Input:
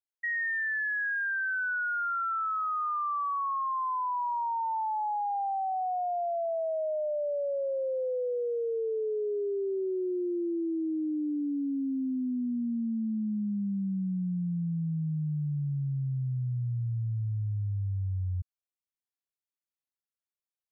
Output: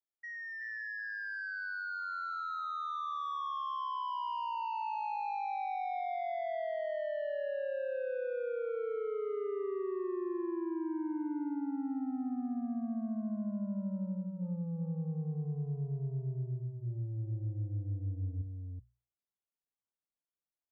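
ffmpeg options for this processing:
ffmpeg -i in.wav -filter_complex "[0:a]lowpass=1100,bandreject=frequency=60:width_type=h:width=6,bandreject=frequency=120:width_type=h:width=6,bandreject=frequency=180:width_type=h:width=6,asoftclip=type=tanh:threshold=-33dB,asplit=2[link_01][link_02];[link_02]aecho=0:1:376:0.596[link_03];[link_01][link_03]amix=inputs=2:normalize=0,volume=-2dB" out.wav

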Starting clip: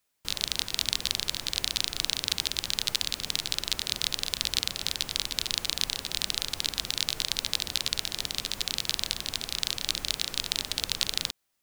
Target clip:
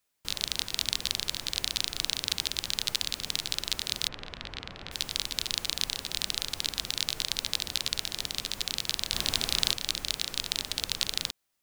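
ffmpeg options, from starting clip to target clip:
ffmpeg -i in.wav -filter_complex "[0:a]asplit=3[link_01][link_02][link_03];[link_01]afade=type=out:start_time=4.07:duration=0.02[link_04];[link_02]lowpass=2000,afade=type=in:start_time=4.07:duration=0.02,afade=type=out:start_time=4.91:duration=0.02[link_05];[link_03]afade=type=in:start_time=4.91:duration=0.02[link_06];[link_04][link_05][link_06]amix=inputs=3:normalize=0,asplit=3[link_07][link_08][link_09];[link_07]afade=type=out:start_time=9.12:duration=0.02[link_10];[link_08]acontrast=80,afade=type=in:start_time=9.12:duration=0.02,afade=type=out:start_time=9.72:duration=0.02[link_11];[link_09]afade=type=in:start_time=9.72:duration=0.02[link_12];[link_10][link_11][link_12]amix=inputs=3:normalize=0,volume=-1.5dB" out.wav

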